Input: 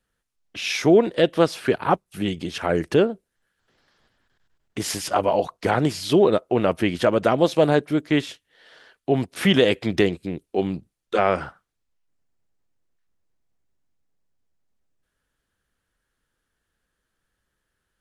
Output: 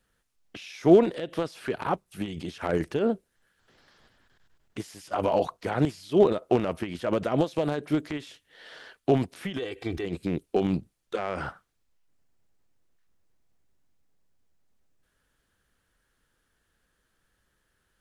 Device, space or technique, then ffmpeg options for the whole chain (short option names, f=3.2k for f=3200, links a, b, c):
de-esser from a sidechain: -filter_complex "[0:a]asettb=1/sr,asplit=3[a][b][c];[a]atrim=end=9.574[d];[b]atrim=start=9.57:end=10.05,asetpts=PTS-STARTPTS,afade=t=in:d=0.004:c=qsin,afade=t=out:st=0.476:d=0.004:c=qsin,aecho=1:1:2.6:0.65,atrim=end_sample=21168[e];[c]atrim=start=10.046[f];[d][e]acrossfade=d=0.004:c1=hsin:c2=qsin[g];[g][f]acrossfade=d=0.004:c1=qsin:c2=hsin,asplit=2[h][i];[i]highpass=5k,apad=whole_len=793971[j];[h][j]sidechaincompress=threshold=-53dB:ratio=6:attack=0.84:release=54,volume=4dB"